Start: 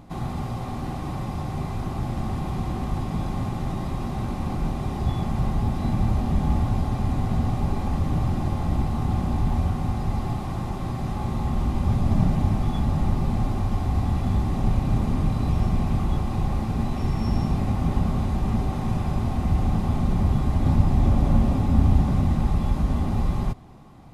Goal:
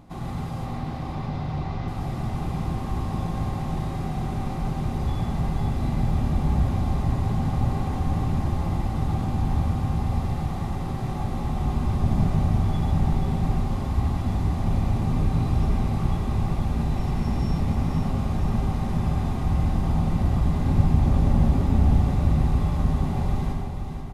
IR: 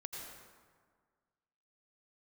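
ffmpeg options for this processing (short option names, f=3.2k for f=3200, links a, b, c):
-filter_complex "[0:a]asettb=1/sr,asplit=3[a][b][c];[a]atrim=end=0.664[d];[b]atrim=start=0.66:end=1.88,asetpts=PTS-STARTPTS,afade=t=in:d=0.004:c=qsin,afade=t=out:st=1.216:d=0.004:c=qsin,lowpass=f=5.3k:w=0.5412,lowpass=f=5.3k:w=1.3066[e];[c]atrim=start=1.876[f];[d][e]acrossfade=d=0.004:c1=hsin:c2=qsin[g];[g][f]acrossfade=d=0.004:c1=qsin:c2=hsin,aecho=1:1:483|966|1449|1932|2415|2898:0.447|0.21|0.0987|0.0464|0.0218|0.0102[h];[1:a]atrim=start_sample=2205,afade=t=out:st=0.2:d=0.01,atrim=end_sample=9261[i];[h][i]afir=irnorm=-1:irlink=0,volume=2dB"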